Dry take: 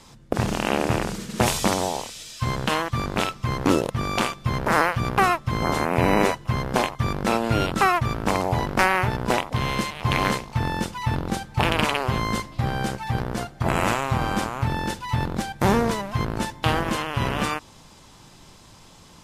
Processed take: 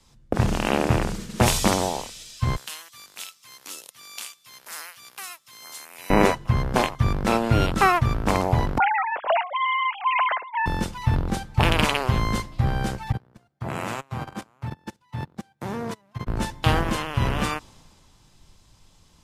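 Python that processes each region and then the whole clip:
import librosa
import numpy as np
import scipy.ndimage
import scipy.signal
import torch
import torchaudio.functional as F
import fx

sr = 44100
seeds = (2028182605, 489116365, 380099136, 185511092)

y = fx.chain(x, sr, fx.differentiator(),
    fx.band_squash(depth_pct=40), at=(2.56, 6.1))
y = fx.chain(y, sr, fx.sine_speech(),
    fx.band_squash(depth_pct=70), at=(8.78, 10.66))
y = fx.chain(y, sr, fx.highpass(hz=97.0, slope=24),
    fx.level_steps(step_db=13),
    fx.upward_expand(threshold_db=-36.0, expansion=2.5), at=(13.12, 16.27))
y = fx.low_shelf(y, sr, hz=82.0, db=10.5)
y = fx.band_widen(y, sr, depth_pct=40)
y = y * librosa.db_to_amplitude(-1.0)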